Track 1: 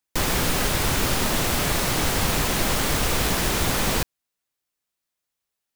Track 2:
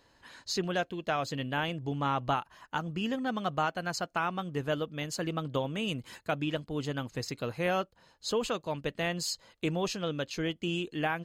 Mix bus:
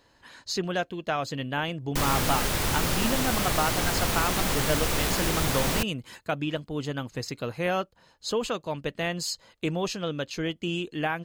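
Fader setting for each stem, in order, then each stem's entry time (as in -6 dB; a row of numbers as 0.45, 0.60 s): -4.0, +2.5 dB; 1.80, 0.00 s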